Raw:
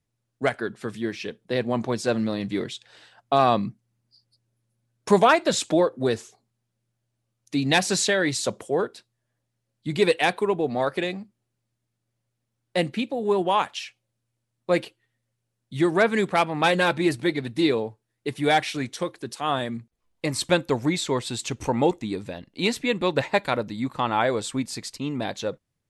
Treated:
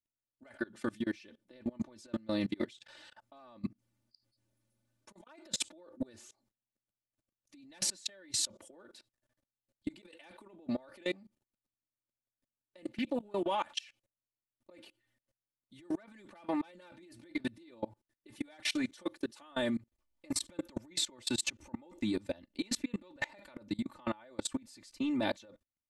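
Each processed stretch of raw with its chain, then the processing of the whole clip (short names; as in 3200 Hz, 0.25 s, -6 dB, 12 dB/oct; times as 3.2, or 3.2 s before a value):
12.98–14.71 compressor 5:1, threshold -25 dBFS + Doppler distortion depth 0.24 ms
whole clip: negative-ratio compressor -28 dBFS, ratio -0.5; comb 3.4 ms, depth 99%; level quantiser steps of 24 dB; gain -7.5 dB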